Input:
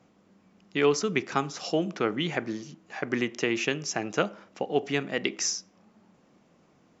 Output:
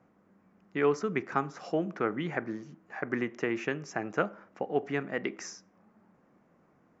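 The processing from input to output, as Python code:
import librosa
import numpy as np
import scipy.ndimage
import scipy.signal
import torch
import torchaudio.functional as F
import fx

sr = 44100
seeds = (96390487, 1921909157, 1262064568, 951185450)

y = fx.high_shelf_res(x, sr, hz=2400.0, db=-10.5, q=1.5)
y = y * librosa.db_to_amplitude(-3.5)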